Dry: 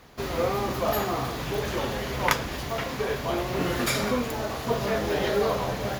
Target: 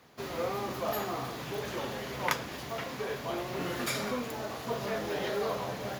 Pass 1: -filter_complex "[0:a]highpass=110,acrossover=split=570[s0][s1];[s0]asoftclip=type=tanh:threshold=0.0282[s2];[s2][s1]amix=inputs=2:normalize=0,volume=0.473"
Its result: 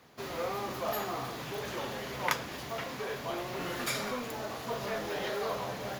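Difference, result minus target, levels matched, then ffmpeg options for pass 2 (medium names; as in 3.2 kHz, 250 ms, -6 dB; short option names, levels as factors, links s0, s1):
saturation: distortion +9 dB
-filter_complex "[0:a]highpass=110,acrossover=split=570[s0][s1];[s0]asoftclip=type=tanh:threshold=0.075[s2];[s2][s1]amix=inputs=2:normalize=0,volume=0.473"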